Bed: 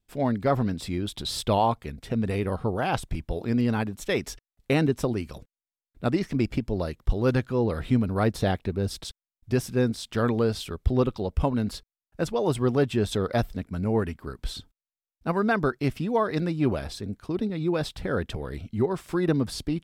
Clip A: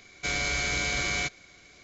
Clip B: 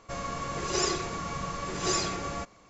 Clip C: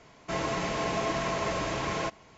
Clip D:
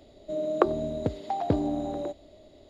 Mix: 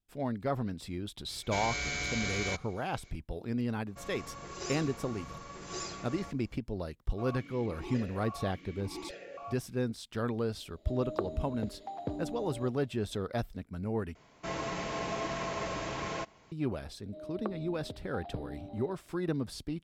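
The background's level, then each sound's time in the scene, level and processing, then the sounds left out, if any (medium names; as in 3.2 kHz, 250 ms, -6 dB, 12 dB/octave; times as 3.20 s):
bed -9 dB
1.28 s: add A -6.5 dB
3.87 s: add B -11.5 dB
7.09 s: add B -0.5 dB + stepped vowel filter 3.5 Hz
10.57 s: add D -11.5 dB
14.15 s: replace with C -5.5 dB
16.84 s: add D -16 dB + brick-wall FIR low-pass 5.2 kHz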